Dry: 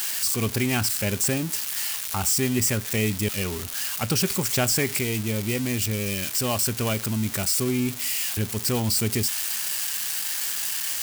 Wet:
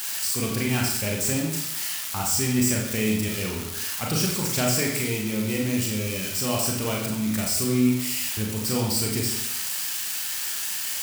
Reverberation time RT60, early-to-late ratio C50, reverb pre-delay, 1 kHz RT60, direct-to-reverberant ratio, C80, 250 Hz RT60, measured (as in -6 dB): 0.75 s, 3.5 dB, 33 ms, 0.75 s, -1.5 dB, 6.0 dB, 0.70 s